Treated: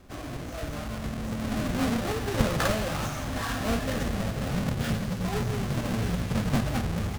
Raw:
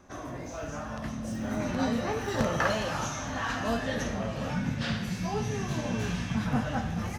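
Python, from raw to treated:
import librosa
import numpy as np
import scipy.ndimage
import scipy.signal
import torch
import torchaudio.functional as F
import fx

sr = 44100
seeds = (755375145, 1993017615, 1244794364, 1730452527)

y = fx.halfwave_hold(x, sr)
y = fx.low_shelf(y, sr, hz=62.0, db=9.0)
y = fx.notch(y, sr, hz=920.0, q=13.0)
y = fx.doppler_dist(y, sr, depth_ms=0.4)
y = y * librosa.db_to_amplitude(-3.5)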